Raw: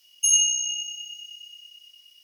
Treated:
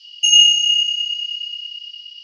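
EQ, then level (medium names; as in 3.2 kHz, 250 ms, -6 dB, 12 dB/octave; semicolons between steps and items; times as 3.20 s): resonant low-pass 4.6 kHz, resonance Q 11; peaking EQ 3 kHz +14.5 dB 0.28 oct; +1.0 dB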